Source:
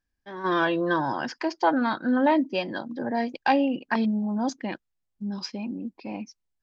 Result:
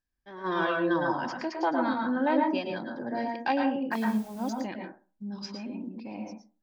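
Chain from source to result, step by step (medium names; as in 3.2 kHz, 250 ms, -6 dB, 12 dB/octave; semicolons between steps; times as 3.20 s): 3.87–4.60 s: modulation noise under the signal 24 dB; reverberation RT60 0.35 s, pre-delay 102 ms, DRR 1.5 dB; trim -6 dB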